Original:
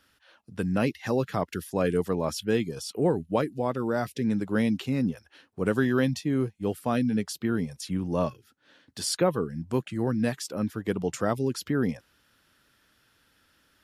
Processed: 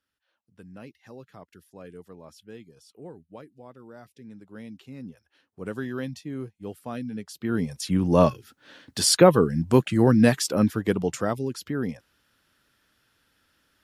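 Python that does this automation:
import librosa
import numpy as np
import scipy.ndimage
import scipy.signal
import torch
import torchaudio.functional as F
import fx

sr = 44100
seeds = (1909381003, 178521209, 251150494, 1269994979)

y = fx.gain(x, sr, db=fx.line((4.41, -18.5), (5.71, -8.0), (7.28, -8.0), (7.55, 2.0), (8.21, 9.0), (10.54, 9.0), (11.5, -2.5)))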